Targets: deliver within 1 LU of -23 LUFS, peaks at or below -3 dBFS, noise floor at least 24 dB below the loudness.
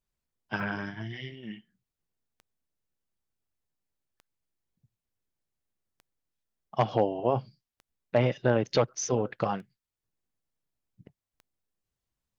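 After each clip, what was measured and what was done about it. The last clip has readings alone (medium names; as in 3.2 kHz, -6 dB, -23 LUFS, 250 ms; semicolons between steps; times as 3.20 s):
clicks found 7; loudness -29.5 LUFS; peak level -11.0 dBFS; loudness target -23.0 LUFS
-> de-click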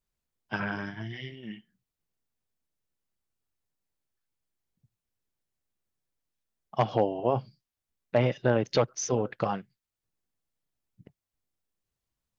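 clicks found 0; loudness -29.5 LUFS; peak level -11.0 dBFS; loudness target -23.0 LUFS
-> trim +6.5 dB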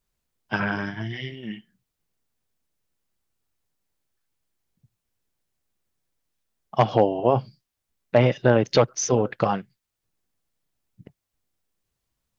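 loudness -23.0 LUFS; peak level -4.5 dBFS; noise floor -83 dBFS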